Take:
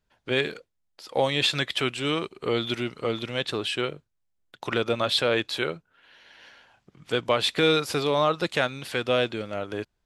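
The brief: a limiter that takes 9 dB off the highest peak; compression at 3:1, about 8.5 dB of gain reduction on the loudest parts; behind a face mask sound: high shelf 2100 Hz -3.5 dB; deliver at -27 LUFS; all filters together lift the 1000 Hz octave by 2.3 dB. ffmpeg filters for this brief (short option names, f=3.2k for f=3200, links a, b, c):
-af "equalizer=f=1k:t=o:g=4,acompressor=threshold=-27dB:ratio=3,alimiter=limit=-20dB:level=0:latency=1,highshelf=f=2.1k:g=-3.5,volume=7dB"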